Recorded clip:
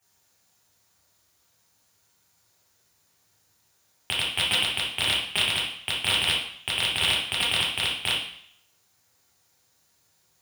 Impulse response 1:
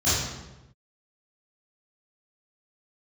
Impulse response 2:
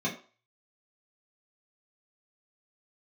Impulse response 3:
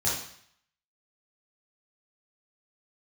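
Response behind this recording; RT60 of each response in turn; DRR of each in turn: 3; 1.0 s, 0.40 s, 0.60 s; -14.5 dB, -6.5 dB, -7.5 dB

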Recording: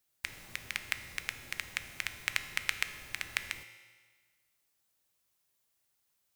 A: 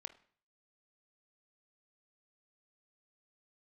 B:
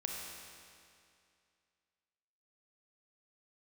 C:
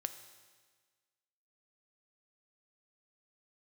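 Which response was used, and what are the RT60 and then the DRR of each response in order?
C; 0.50 s, 2.4 s, 1.5 s; 10.5 dB, -1.0 dB, 9.0 dB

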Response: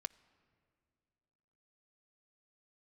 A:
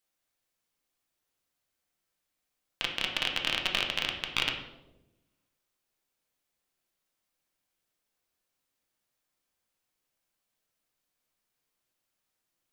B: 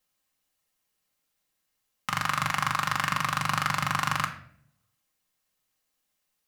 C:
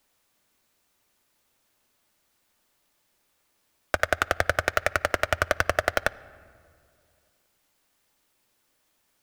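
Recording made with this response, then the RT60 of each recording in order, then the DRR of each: C; 1.0 s, 0.70 s, 2.3 s; 1.0 dB, 0.5 dB, 13.0 dB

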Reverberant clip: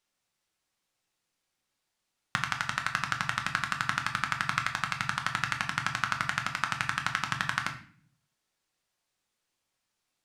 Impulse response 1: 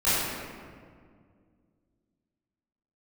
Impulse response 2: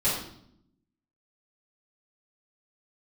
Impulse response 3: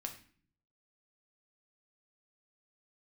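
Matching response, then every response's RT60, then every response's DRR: 3; 2.0 s, 0.70 s, 0.45 s; -14.5 dB, -12.5 dB, 3.5 dB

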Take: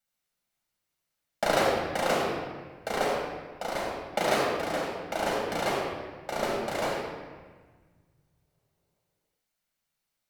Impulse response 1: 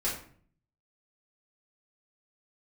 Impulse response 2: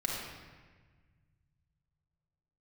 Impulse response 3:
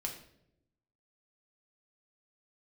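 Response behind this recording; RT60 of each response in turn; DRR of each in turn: 2; 0.50 s, 1.4 s, no single decay rate; -7.5 dB, -3.0 dB, 0.0 dB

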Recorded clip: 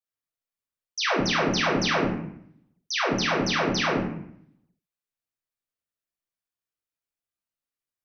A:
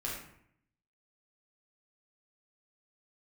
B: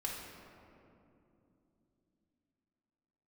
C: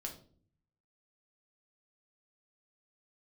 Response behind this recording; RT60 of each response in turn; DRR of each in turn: A; 0.65 s, 2.9 s, 0.50 s; -4.5 dB, -3.0 dB, 1.0 dB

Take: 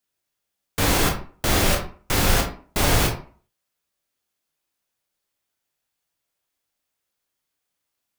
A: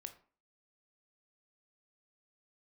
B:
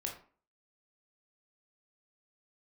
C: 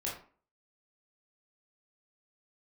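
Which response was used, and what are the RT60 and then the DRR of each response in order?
B; 0.40 s, 0.40 s, 0.40 s; 7.5 dB, 0.5 dB, -5.0 dB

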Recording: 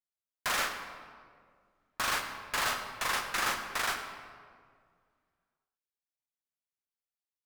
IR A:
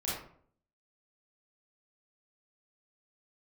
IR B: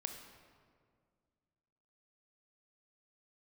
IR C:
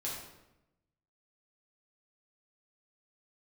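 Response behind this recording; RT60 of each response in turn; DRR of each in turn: B; 0.55 s, 2.0 s, 0.90 s; -8.0 dB, 5.0 dB, -5.5 dB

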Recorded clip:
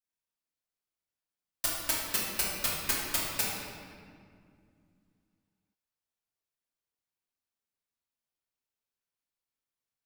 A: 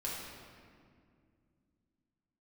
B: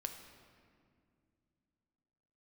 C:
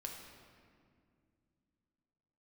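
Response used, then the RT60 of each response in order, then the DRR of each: A; 2.2 s, 2.3 s, 2.2 s; -6.0 dB, 5.0 dB, 0.0 dB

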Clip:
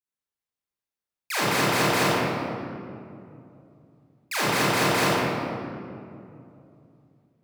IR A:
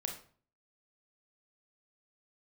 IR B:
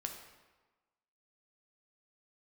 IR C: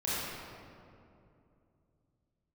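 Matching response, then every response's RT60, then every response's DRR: C; 0.45 s, 1.3 s, 2.7 s; 2.0 dB, 3.0 dB, -10.0 dB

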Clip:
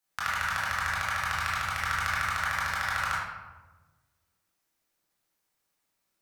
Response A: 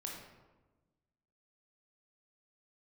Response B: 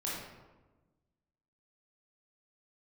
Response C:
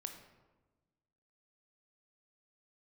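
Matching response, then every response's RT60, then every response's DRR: B; 1.2 s, 1.2 s, 1.2 s; -1.5 dB, -7.0 dB, 5.0 dB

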